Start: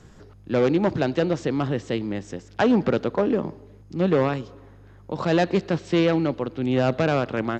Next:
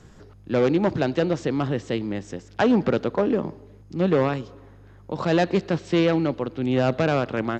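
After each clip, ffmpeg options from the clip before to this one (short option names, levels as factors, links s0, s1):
-af anull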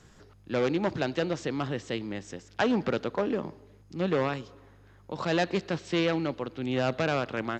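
-af "tiltshelf=f=970:g=-3.5,volume=0.596"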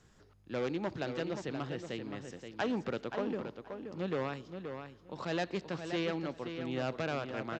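-filter_complex "[0:a]asplit=2[s0][s1];[s1]adelay=526,lowpass=f=4800:p=1,volume=0.422,asplit=2[s2][s3];[s3]adelay=526,lowpass=f=4800:p=1,volume=0.17,asplit=2[s4][s5];[s5]adelay=526,lowpass=f=4800:p=1,volume=0.17[s6];[s0][s2][s4][s6]amix=inputs=4:normalize=0,volume=0.398"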